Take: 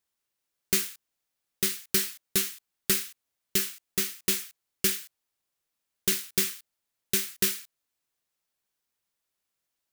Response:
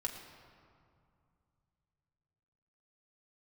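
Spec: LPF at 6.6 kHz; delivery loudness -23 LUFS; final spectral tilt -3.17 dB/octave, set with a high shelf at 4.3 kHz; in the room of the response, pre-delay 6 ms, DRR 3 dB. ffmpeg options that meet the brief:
-filter_complex "[0:a]lowpass=6600,highshelf=f=4300:g=-8.5,asplit=2[s0][s1];[1:a]atrim=start_sample=2205,adelay=6[s2];[s1][s2]afir=irnorm=-1:irlink=0,volume=0.631[s3];[s0][s3]amix=inputs=2:normalize=0,volume=3.76"

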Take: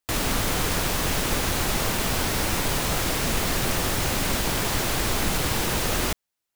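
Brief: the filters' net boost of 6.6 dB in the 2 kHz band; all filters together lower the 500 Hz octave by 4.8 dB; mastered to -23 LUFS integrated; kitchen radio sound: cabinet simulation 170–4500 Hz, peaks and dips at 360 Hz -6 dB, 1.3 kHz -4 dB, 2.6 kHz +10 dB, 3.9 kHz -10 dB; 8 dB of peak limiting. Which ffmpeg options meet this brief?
-af "equalizer=f=500:t=o:g=-4.5,equalizer=f=2000:t=o:g=4.5,alimiter=limit=0.119:level=0:latency=1,highpass=170,equalizer=f=360:t=q:w=4:g=-6,equalizer=f=1300:t=q:w=4:g=-4,equalizer=f=2600:t=q:w=4:g=10,equalizer=f=3900:t=q:w=4:g=-10,lowpass=f=4500:w=0.5412,lowpass=f=4500:w=1.3066,volume=1.78"

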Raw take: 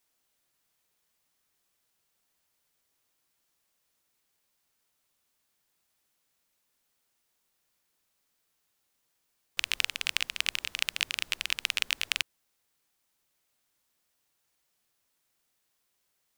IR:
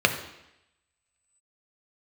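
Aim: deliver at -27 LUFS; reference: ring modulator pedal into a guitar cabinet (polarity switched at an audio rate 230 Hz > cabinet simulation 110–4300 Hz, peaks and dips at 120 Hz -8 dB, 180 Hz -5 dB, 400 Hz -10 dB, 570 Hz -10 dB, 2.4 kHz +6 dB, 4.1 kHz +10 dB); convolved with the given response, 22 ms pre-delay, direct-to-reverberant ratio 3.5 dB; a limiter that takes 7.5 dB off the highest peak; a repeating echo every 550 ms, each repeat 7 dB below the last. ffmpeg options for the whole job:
-filter_complex "[0:a]alimiter=limit=0.299:level=0:latency=1,aecho=1:1:550|1100|1650|2200|2750:0.447|0.201|0.0905|0.0407|0.0183,asplit=2[s0][s1];[1:a]atrim=start_sample=2205,adelay=22[s2];[s1][s2]afir=irnorm=-1:irlink=0,volume=0.0944[s3];[s0][s3]amix=inputs=2:normalize=0,aeval=exprs='val(0)*sgn(sin(2*PI*230*n/s))':c=same,highpass=110,equalizer=f=120:t=q:w=4:g=-8,equalizer=f=180:t=q:w=4:g=-5,equalizer=f=400:t=q:w=4:g=-10,equalizer=f=570:t=q:w=4:g=-10,equalizer=f=2400:t=q:w=4:g=6,equalizer=f=4100:t=q:w=4:g=10,lowpass=f=4300:w=0.5412,lowpass=f=4300:w=1.3066,volume=1.26"

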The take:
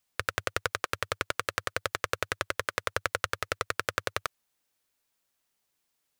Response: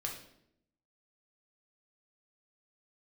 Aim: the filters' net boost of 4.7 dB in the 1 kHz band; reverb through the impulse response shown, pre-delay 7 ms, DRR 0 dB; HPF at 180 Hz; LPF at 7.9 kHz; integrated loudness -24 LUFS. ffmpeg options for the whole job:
-filter_complex "[0:a]highpass=180,lowpass=7900,equalizer=f=1000:t=o:g=6.5,asplit=2[s0][s1];[1:a]atrim=start_sample=2205,adelay=7[s2];[s1][s2]afir=irnorm=-1:irlink=0,volume=0.891[s3];[s0][s3]amix=inputs=2:normalize=0,volume=1.41"

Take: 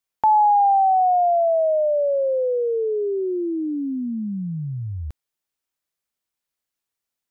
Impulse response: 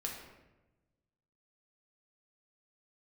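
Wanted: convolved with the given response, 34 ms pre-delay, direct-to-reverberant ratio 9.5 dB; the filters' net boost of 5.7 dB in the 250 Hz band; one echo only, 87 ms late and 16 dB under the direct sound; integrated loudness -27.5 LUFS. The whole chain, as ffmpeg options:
-filter_complex "[0:a]equalizer=f=250:t=o:g=7.5,aecho=1:1:87:0.158,asplit=2[s0][s1];[1:a]atrim=start_sample=2205,adelay=34[s2];[s1][s2]afir=irnorm=-1:irlink=0,volume=0.316[s3];[s0][s3]amix=inputs=2:normalize=0,volume=0.355"

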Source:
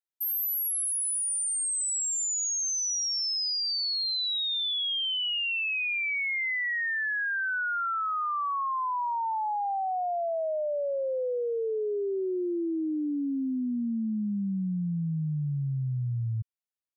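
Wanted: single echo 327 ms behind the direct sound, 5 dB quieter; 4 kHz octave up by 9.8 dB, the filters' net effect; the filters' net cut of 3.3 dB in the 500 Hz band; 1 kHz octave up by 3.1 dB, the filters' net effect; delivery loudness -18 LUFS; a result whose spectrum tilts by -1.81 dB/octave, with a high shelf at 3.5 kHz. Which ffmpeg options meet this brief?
-af "equalizer=f=500:t=o:g=-6,equalizer=f=1000:t=o:g=4.5,highshelf=f=3500:g=6,equalizer=f=4000:t=o:g=8,aecho=1:1:327:0.562,volume=1.26"

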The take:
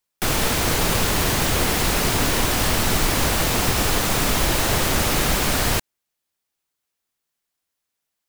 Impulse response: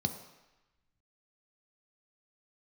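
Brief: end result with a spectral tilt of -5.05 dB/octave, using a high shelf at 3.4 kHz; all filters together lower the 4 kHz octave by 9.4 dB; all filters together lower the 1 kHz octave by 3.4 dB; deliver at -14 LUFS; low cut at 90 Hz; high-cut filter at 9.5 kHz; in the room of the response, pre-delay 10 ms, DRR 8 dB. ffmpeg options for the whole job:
-filter_complex "[0:a]highpass=90,lowpass=9500,equalizer=f=1000:t=o:g=-3.5,highshelf=f=3400:g=-4.5,equalizer=f=4000:t=o:g=-9,asplit=2[s0][s1];[1:a]atrim=start_sample=2205,adelay=10[s2];[s1][s2]afir=irnorm=-1:irlink=0,volume=0.266[s3];[s0][s3]amix=inputs=2:normalize=0,volume=2.66"

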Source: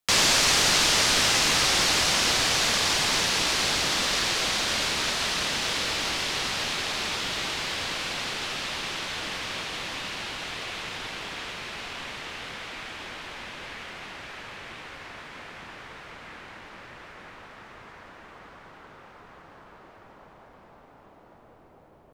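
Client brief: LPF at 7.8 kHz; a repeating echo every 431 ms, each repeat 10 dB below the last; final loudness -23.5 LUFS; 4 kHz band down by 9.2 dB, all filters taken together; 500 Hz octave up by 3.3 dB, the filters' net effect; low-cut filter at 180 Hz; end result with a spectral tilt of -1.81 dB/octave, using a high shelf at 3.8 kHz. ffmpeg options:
-af "highpass=180,lowpass=7800,equalizer=f=500:t=o:g=4.5,highshelf=f=3800:g=-6.5,equalizer=f=4000:t=o:g=-7.5,aecho=1:1:431|862|1293|1724:0.316|0.101|0.0324|0.0104,volume=2"

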